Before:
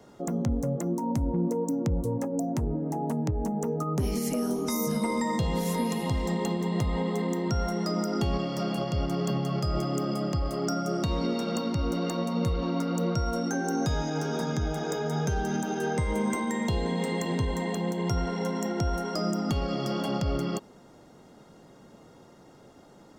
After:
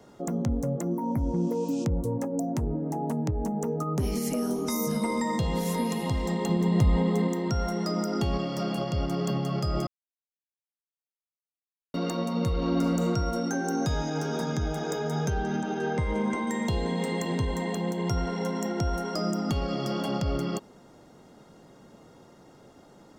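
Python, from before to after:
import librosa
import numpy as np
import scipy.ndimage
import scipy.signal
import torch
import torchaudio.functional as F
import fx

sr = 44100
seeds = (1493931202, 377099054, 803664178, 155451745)

y = fx.spec_repair(x, sr, seeds[0], start_s=0.94, length_s=0.88, low_hz=2400.0, high_hz=10000.0, source='both')
y = fx.low_shelf(y, sr, hz=260.0, db=8.0, at=(6.49, 7.28))
y = fx.reverb_throw(y, sr, start_s=12.51, length_s=0.57, rt60_s=1.4, drr_db=2.5)
y = fx.lowpass(y, sr, hz=4400.0, slope=12, at=(15.3, 16.47))
y = fx.edit(y, sr, fx.silence(start_s=9.87, length_s=2.07), tone=tone)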